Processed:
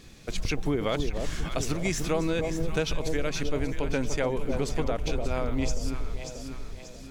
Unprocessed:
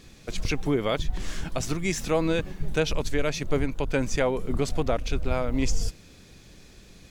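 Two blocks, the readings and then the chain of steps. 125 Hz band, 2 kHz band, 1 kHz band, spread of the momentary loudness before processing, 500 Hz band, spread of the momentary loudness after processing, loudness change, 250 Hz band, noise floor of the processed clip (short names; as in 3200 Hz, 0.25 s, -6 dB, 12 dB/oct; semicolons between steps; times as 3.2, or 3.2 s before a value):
-1.5 dB, -2.0 dB, -2.0 dB, 8 LU, -2.0 dB, 10 LU, -2.0 dB, -1.5 dB, -44 dBFS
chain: echo with dull and thin repeats by turns 0.293 s, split 880 Hz, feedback 66%, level -6.5 dB; compressor, threshold -22 dBFS, peak gain reduction 6.5 dB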